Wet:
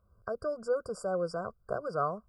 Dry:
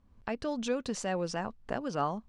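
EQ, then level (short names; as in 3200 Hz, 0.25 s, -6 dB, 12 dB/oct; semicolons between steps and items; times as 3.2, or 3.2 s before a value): HPF 83 Hz 6 dB/oct; brick-wall FIR band-stop 1600–4600 Hz; fixed phaser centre 1300 Hz, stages 8; +3.5 dB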